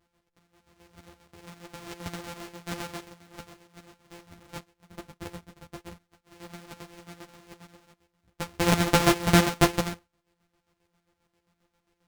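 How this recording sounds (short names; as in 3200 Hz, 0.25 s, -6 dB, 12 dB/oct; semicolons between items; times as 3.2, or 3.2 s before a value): a buzz of ramps at a fixed pitch in blocks of 256 samples; chopped level 7.5 Hz, depth 60%, duty 45%; aliases and images of a low sample rate 12000 Hz, jitter 0%; a shimmering, thickened sound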